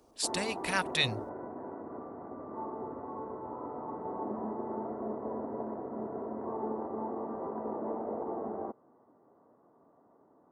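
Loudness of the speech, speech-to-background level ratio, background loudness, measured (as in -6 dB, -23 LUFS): -31.5 LUFS, 7.5 dB, -39.0 LUFS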